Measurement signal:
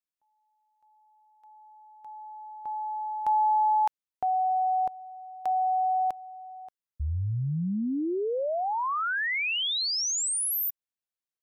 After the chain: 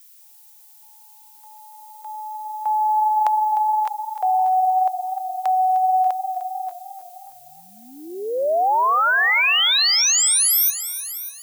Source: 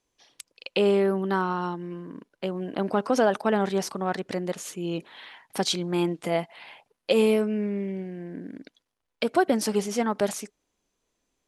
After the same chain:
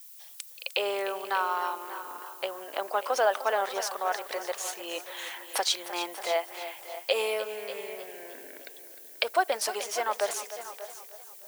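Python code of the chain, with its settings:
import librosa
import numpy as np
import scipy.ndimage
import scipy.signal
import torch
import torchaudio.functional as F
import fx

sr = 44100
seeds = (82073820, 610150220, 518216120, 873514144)

p1 = fx.recorder_agc(x, sr, target_db=-14.5, rise_db_per_s=5.1, max_gain_db=30)
p2 = scipy.signal.sosfilt(scipy.signal.butter(4, 560.0, 'highpass', fs=sr, output='sos'), p1)
p3 = fx.dmg_noise_colour(p2, sr, seeds[0], colour='violet', level_db=-49.0)
p4 = p3 + fx.echo_single(p3, sr, ms=588, db=-14.5, dry=0)
y = fx.echo_warbled(p4, sr, ms=304, feedback_pct=53, rate_hz=2.8, cents=53, wet_db=-13.0)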